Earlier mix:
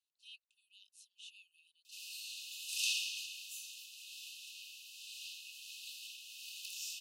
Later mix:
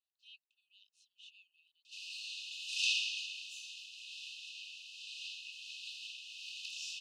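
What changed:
background +6.5 dB
master: add high-frequency loss of the air 130 metres

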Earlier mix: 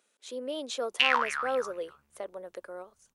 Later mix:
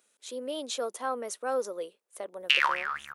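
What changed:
background: entry +1.50 s
master: add high-shelf EQ 8,300 Hz +10 dB

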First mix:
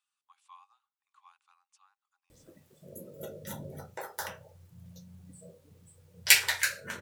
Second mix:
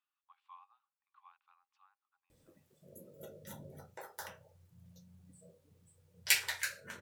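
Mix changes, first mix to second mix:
speech: add high-frequency loss of the air 340 metres
background −8.5 dB

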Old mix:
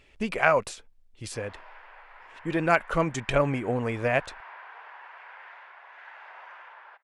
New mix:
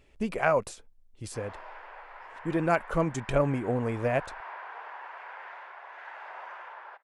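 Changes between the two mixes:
background +8.0 dB
master: add parametric band 2,700 Hz −8 dB 2.6 octaves

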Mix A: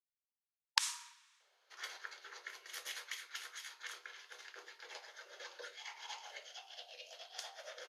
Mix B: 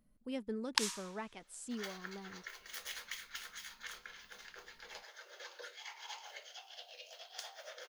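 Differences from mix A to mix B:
speech: unmuted
master: remove linear-phase brick-wall low-pass 13,000 Hz

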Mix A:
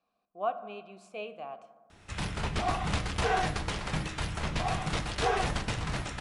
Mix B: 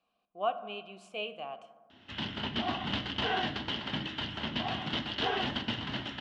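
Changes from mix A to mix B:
background: add loudspeaker in its box 150–4,100 Hz, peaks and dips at 170 Hz −8 dB, 240 Hz +10 dB, 480 Hz −8 dB, 730 Hz −4 dB, 1,200 Hz −7 dB, 2,400 Hz −8 dB
master: add parametric band 3,000 Hz +12 dB 0.33 octaves

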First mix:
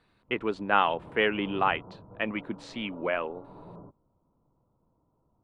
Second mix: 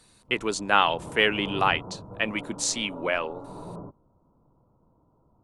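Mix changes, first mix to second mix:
speech: remove high-frequency loss of the air 450 metres
background +7.5 dB

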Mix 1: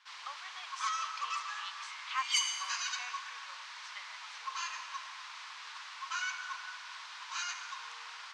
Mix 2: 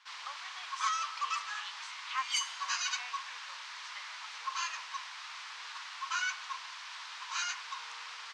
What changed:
first sound +5.0 dB
reverb: off

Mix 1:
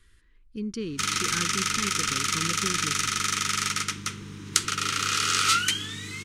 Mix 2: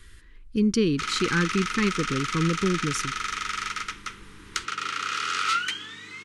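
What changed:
speech +10.5 dB
background: add resonant band-pass 1,200 Hz, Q 0.59

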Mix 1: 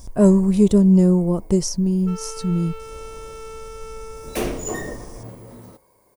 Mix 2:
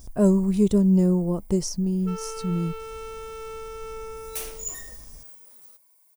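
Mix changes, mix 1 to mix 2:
speech −5.0 dB
first sound: add first difference

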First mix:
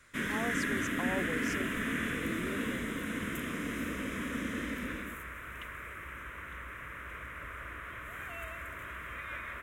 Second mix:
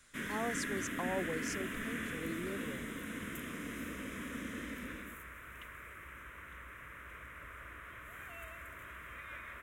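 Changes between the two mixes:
background −6.5 dB
master: add high-shelf EQ 6,300 Hz +4.5 dB

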